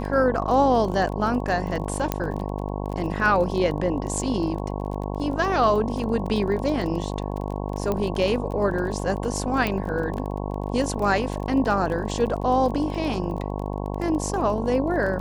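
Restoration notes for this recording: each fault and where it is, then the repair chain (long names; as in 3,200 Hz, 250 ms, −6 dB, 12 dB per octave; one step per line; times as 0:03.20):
mains buzz 50 Hz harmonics 22 −29 dBFS
surface crackle 25 per second −30 dBFS
0:02.12: click −8 dBFS
0:07.92: click −13 dBFS
0:09.67: click −11 dBFS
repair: click removal
hum removal 50 Hz, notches 22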